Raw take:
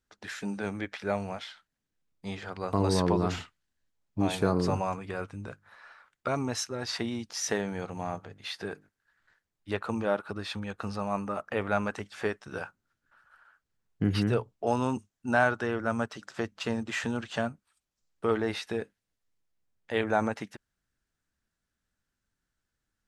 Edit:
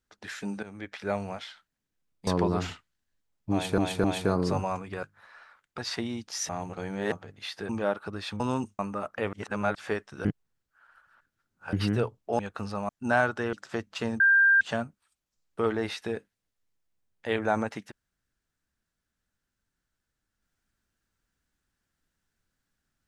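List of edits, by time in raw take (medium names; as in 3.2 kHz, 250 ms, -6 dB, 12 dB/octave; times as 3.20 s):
0.63–1.02 s: fade in, from -15.5 dB
2.27–2.96 s: delete
4.21–4.47 s: loop, 3 plays
5.20–5.52 s: delete
6.27–6.80 s: delete
7.51–8.14 s: reverse
8.71–9.92 s: delete
10.63–11.13 s: swap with 14.73–15.12 s
11.67–12.09 s: reverse
12.59–14.07 s: reverse
15.76–16.18 s: delete
16.85–17.26 s: bleep 1.59 kHz -16.5 dBFS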